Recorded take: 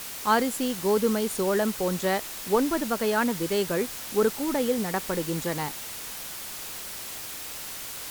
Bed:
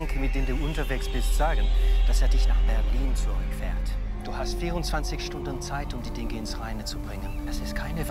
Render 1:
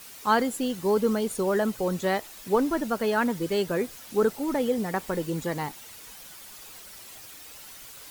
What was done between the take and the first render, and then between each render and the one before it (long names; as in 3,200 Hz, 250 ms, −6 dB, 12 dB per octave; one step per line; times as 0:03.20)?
broadband denoise 10 dB, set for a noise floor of −38 dBFS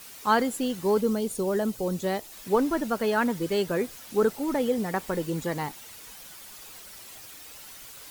0:01.01–0:02.32: parametric band 1,500 Hz −7 dB 2.1 octaves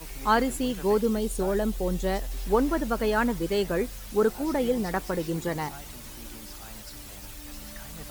mix in bed −13 dB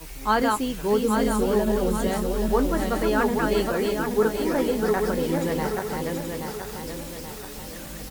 feedback delay that plays each chunk backwards 414 ms, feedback 68%, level −2.5 dB
double-tracking delay 19 ms −12 dB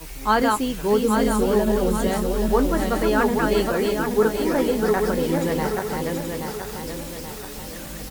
level +2.5 dB